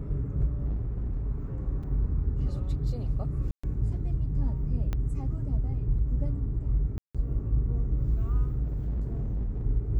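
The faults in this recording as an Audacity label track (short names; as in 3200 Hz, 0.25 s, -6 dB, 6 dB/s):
0.650000	1.260000	clipped -26.5 dBFS
1.830000	1.830000	gap 4.6 ms
3.510000	3.630000	gap 0.125 s
4.930000	4.930000	pop -19 dBFS
6.980000	7.150000	gap 0.166 s
8.620000	9.630000	clipped -26.5 dBFS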